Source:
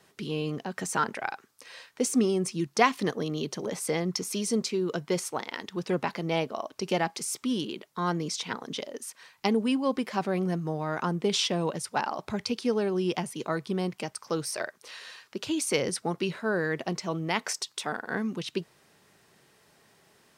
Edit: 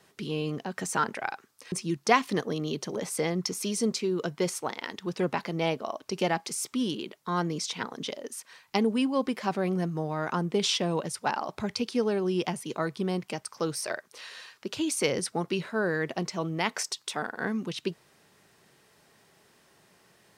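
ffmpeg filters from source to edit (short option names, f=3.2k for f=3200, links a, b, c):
-filter_complex "[0:a]asplit=2[a][b];[a]atrim=end=1.722[c];[b]atrim=start=2.418[d];[c][d]acrossfade=d=0.004:c1=hsin:c2=hsin"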